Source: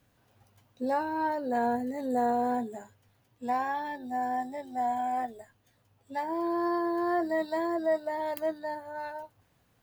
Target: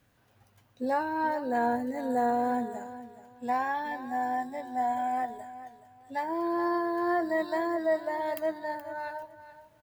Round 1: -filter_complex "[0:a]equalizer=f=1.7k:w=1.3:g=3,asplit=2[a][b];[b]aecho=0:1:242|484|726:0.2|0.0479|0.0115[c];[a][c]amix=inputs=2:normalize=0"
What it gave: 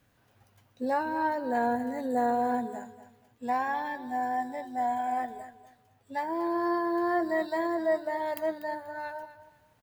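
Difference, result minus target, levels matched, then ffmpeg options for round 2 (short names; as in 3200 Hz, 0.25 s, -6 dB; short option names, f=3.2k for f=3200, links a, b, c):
echo 0.182 s early
-filter_complex "[0:a]equalizer=f=1.7k:w=1.3:g=3,asplit=2[a][b];[b]aecho=0:1:424|848|1272:0.2|0.0479|0.0115[c];[a][c]amix=inputs=2:normalize=0"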